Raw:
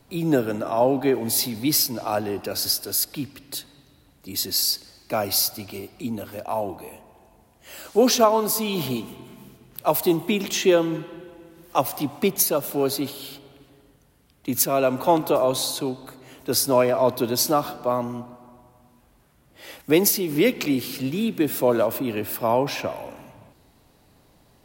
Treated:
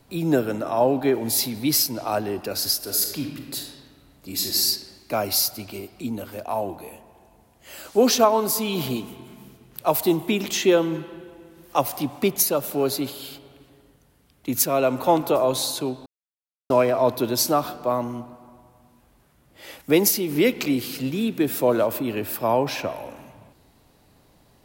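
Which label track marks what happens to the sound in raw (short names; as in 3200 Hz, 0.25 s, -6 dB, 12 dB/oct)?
2.760000	4.630000	reverb throw, RT60 1.3 s, DRR 2 dB
16.060000	16.700000	mute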